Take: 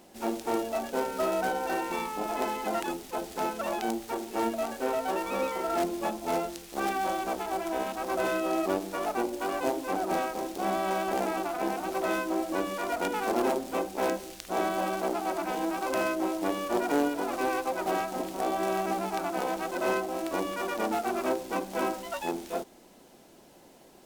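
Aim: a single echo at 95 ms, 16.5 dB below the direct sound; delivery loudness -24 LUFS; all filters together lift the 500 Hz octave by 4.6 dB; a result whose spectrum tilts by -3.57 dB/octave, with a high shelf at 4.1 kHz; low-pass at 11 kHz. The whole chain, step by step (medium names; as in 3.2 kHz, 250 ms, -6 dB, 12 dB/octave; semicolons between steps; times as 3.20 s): low-pass 11 kHz; peaking EQ 500 Hz +6 dB; treble shelf 4.1 kHz +7.5 dB; delay 95 ms -16.5 dB; trim +3.5 dB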